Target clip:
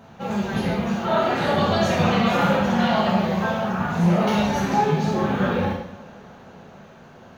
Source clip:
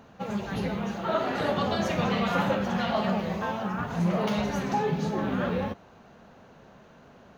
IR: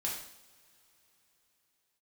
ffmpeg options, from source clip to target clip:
-filter_complex "[1:a]atrim=start_sample=2205[a];[0:a][a]afir=irnorm=-1:irlink=0,volume=4dB"

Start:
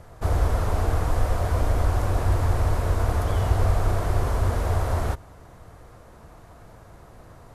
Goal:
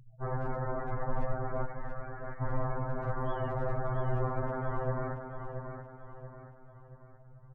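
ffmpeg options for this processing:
-filter_complex "[0:a]asettb=1/sr,asplit=3[a][b][c];[a]atrim=end=1.654[d];[b]atrim=start=1.65:end=2.42,asetpts=PTS-STARTPTS,afade=t=in:d=0.004:c=qsin,afade=t=out:st=0.766:d=0.004:c=qsin,highpass=f=1.5k:w=0.5412,highpass=f=1.5k:w=1.3066[e];[c]atrim=start=2.416[f];[d][e]acrossfade=d=0.004:c1=hsin:c2=qsin[g];[g][f]acrossfade=d=0.004:c1=qsin:c2=hsin,afftfilt=real='re*gte(hypot(re,im),0.02)':imag='im*gte(hypot(re,im),0.02)':win_size=1024:overlap=0.75,aemphasis=mode=reproduction:type=cd,volume=12dB,asoftclip=hard,volume=-12dB,aecho=1:1:679|1358|2037|2716|3395:0.422|0.177|0.0744|0.0312|0.0131,afftfilt=real='re*2.45*eq(mod(b,6),0)':imag='im*2.45*eq(mod(b,6),0)':win_size=2048:overlap=0.75,volume=-3.5dB"

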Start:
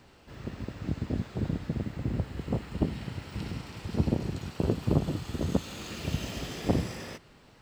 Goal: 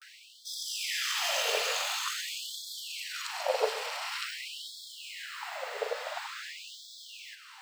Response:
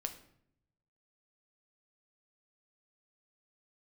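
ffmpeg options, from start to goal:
-filter_complex "[0:a]areverse,asplit=2[a][b];[1:a]atrim=start_sample=2205[c];[b][c]afir=irnorm=-1:irlink=0,volume=-0.5dB[d];[a][d]amix=inputs=2:normalize=0,afftfilt=real='re*gte(b*sr/1024,410*pow(3300/410,0.5+0.5*sin(2*PI*0.47*pts/sr)))':imag='im*gte(b*sr/1024,410*pow(3300/410,0.5+0.5*sin(2*PI*0.47*pts/sr)))':win_size=1024:overlap=0.75,volume=6.5dB"

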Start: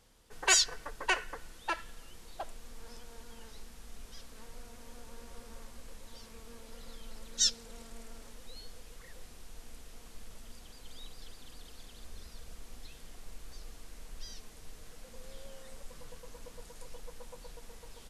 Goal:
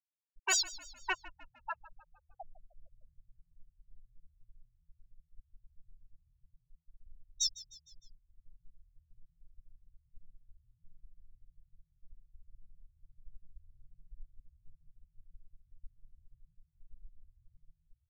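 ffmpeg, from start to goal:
-filter_complex "[0:a]afftfilt=real='re*gte(hypot(re,im),0.112)':imag='im*gte(hypot(re,im),0.112)':win_size=1024:overlap=0.75,asoftclip=type=tanh:threshold=-17dB,asplit=5[a][b][c][d][e];[b]adelay=153,afreqshift=-42,volume=-18dB[f];[c]adelay=306,afreqshift=-84,volume=-23.8dB[g];[d]adelay=459,afreqshift=-126,volume=-29.7dB[h];[e]adelay=612,afreqshift=-168,volume=-35.5dB[i];[a][f][g][h][i]amix=inputs=5:normalize=0,volume=-2.5dB"

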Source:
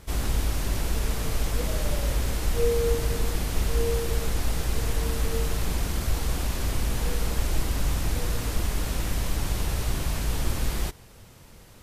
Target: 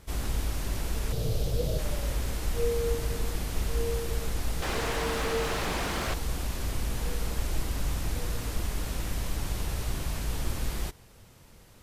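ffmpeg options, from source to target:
-filter_complex "[0:a]asettb=1/sr,asplit=3[a][b][c];[a]atrim=end=1.124[d];[b]atrim=start=1.12:end=1.79,asetpts=PTS-STARTPTS,afade=t=in:d=0.004:c=qsin,afade=t=out:st=0.666:d=0.004:c=qsin,equalizer=f=125:t=o:w=1:g=12,equalizer=f=250:t=o:w=1:g=-5,equalizer=f=500:t=o:w=1:g=10,equalizer=f=1k:t=o:w=1:g=-8,equalizer=f=2k:t=o:w=1:g=-8,equalizer=f=4k:t=o:w=1:g=5,equalizer=f=8k:t=o:w=1:g=-4[e];[c]atrim=start=1.786[f];[d][e]acrossfade=d=0.004:c1=hsin:c2=qsin[g];[g][f]acrossfade=d=0.004:c1=qsin:c2=hsin,asettb=1/sr,asplit=3[h][i][j];[h]atrim=end=4.624[k];[i]atrim=start=4.62:end=6.14,asetpts=PTS-STARTPTS,afade=t=in:d=0.004:c=qsin,afade=t=out:st=1.516:d=0.004:c=qsin,asplit=2[l][m];[m]highpass=f=720:p=1,volume=22dB,asoftclip=type=tanh:threshold=-13dB[n];[l][n]amix=inputs=2:normalize=0,lowpass=f=2k:p=1,volume=-6dB[o];[j]atrim=start=6.136[p];[k][o]acrossfade=d=0.004:c1=hsin:c2=qsin[q];[q][p]acrossfade=d=0.004:c1=qsin:c2=hsin,volume=-4.5dB"

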